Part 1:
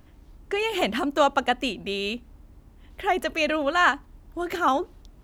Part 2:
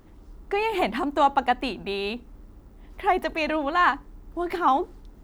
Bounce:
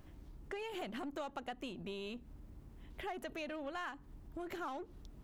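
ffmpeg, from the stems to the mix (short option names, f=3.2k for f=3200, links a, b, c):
-filter_complex "[0:a]volume=-4.5dB[a];[1:a]lowpass=1.9k,equalizer=f=140:w=1:g=12.5,aeval=exprs='(tanh(28.2*val(0)+0.55)-tanh(0.55))/28.2':c=same,volume=-16.5dB,asplit=2[b][c];[c]apad=whole_len=230799[d];[a][d]sidechaincompress=threshold=-60dB:ratio=3:attack=5.4:release=169[e];[e][b]amix=inputs=2:normalize=0,acompressor=threshold=-39dB:ratio=6"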